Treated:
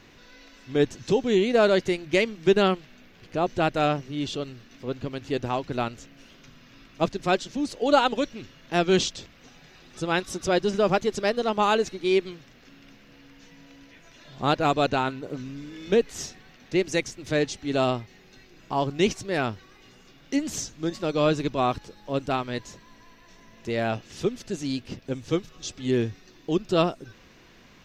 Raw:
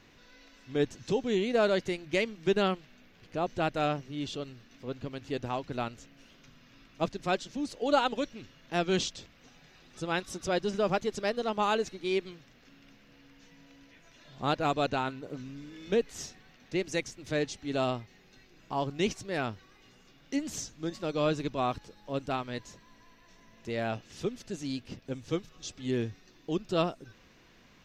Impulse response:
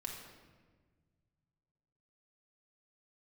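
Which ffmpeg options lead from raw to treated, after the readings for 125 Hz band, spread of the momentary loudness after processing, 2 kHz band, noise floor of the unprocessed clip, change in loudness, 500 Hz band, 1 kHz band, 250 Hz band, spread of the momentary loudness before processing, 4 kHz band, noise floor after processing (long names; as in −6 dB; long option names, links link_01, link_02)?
+6.0 dB, 13 LU, +6.0 dB, −60 dBFS, +6.5 dB, +6.5 dB, +6.0 dB, +6.5 dB, 12 LU, +6.0 dB, −54 dBFS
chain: -af "equalizer=frequency=370:width=6.9:gain=2.5,volume=6dB"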